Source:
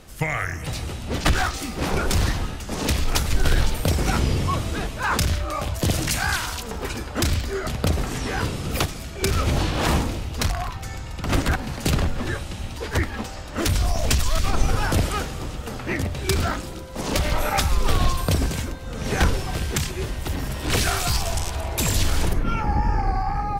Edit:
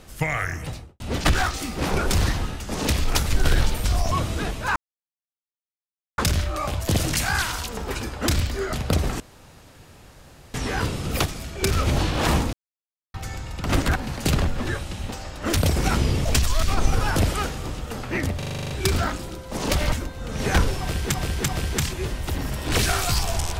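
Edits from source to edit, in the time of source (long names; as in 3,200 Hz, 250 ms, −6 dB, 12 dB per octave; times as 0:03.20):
0:00.54–0:01.00: fade out and dull
0:03.84–0:04.47: swap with 0:13.74–0:14.01
0:05.12: splice in silence 1.42 s
0:08.14: splice in room tone 1.34 s
0:10.13–0:10.74: silence
0:12.69–0:13.21: remove
0:16.14: stutter 0.04 s, 9 plays
0:17.36–0:18.58: remove
0:19.46–0:19.80: repeat, 3 plays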